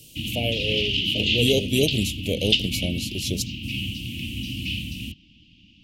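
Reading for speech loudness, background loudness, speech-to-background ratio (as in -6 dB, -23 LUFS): -26.5 LUFS, -25.5 LUFS, -1.0 dB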